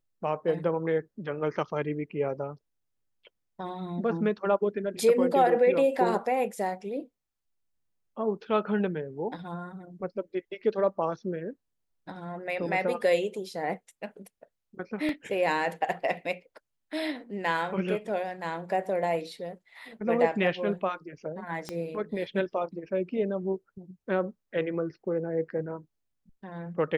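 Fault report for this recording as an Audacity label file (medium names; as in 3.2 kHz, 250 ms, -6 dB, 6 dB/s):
15.090000	15.090000	dropout 2.1 ms
21.690000	21.690000	pop -20 dBFS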